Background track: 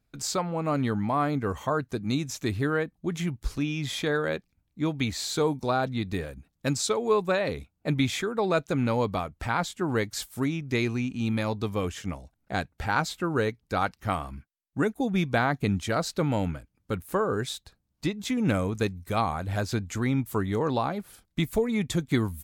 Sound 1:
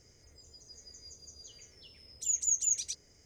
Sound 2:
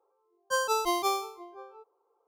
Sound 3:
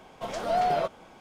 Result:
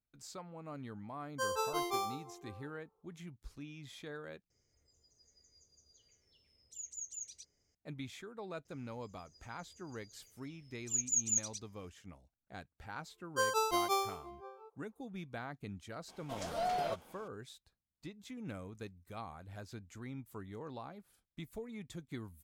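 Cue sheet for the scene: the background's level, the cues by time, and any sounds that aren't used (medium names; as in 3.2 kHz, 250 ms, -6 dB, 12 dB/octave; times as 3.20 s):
background track -19.5 dB
0.88 s: add 2 -8 dB + bucket-brigade echo 88 ms, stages 1024, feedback 36%, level -7 dB
4.50 s: replace with 1 -15.5 dB
8.65 s: add 1 -2.5 dB + upward expansion, over -45 dBFS
12.86 s: add 2 -4.5 dB
16.08 s: add 3 -10 dB + treble shelf 4.4 kHz +9.5 dB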